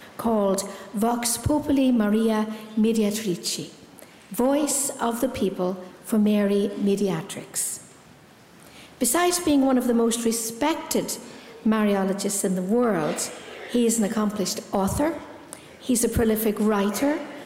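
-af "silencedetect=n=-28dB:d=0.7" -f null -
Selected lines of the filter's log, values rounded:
silence_start: 7.76
silence_end: 9.01 | silence_duration: 1.25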